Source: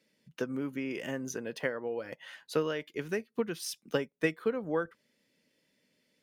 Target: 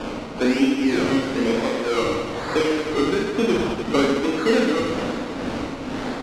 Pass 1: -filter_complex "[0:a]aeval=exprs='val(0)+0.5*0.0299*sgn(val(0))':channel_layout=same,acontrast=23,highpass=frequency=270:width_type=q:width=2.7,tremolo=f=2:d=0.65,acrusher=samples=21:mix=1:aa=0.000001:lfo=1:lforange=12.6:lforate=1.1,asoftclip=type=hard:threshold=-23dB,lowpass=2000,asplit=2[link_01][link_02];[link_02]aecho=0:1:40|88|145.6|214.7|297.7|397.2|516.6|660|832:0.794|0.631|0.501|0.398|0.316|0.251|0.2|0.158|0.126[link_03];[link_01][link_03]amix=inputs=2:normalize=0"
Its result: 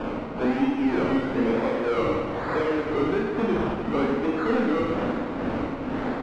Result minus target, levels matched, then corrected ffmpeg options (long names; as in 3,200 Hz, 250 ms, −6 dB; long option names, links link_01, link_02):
4,000 Hz band −8.5 dB; hard clipping: distortion +12 dB
-filter_complex "[0:a]aeval=exprs='val(0)+0.5*0.0299*sgn(val(0))':channel_layout=same,acontrast=23,highpass=frequency=270:width_type=q:width=2.7,tremolo=f=2:d=0.65,acrusher=samples=21:mix=1:aa=0.000001:lfo=1:lforange=12.6:lforate=1.1,asoftclip=type=hard:threshold=-14.5dB,lowpass=5200,asplit=2[link_01][link_02];[link_02]aecho=0:1:40|88|145.6|214.7|297.7|397.2|516.6|660|832:0.794|0.631|0.501|0.398|0.316|0.251|0.2|0.158|0.126[link_03];[link_01][link_03]amix=inputs=2:normalize=0"